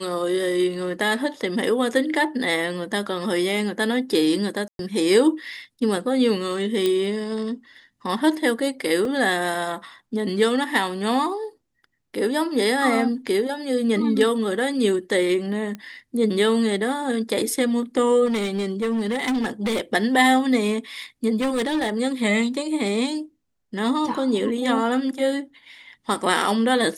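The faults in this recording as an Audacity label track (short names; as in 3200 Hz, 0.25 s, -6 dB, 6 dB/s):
4.680000	4.790000	gap 0.112 s
6.860000	6.860000	pop -10 dBFS
9.050000	9.050000	gap 2.2 ms
15.750000	15.750000	pop -20 dBFS
18.250000	19.810000	clipped -19.5 dBFS
21.400000	21.900000	clipped -19 dBFS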